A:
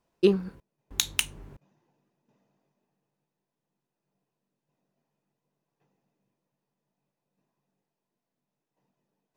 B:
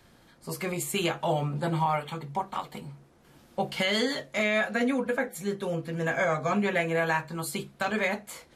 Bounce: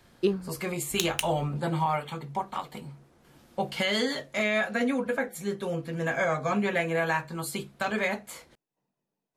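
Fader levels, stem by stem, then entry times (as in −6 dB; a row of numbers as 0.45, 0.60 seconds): −4.5, −0.5 decibels; 0.00, 0.00 seconds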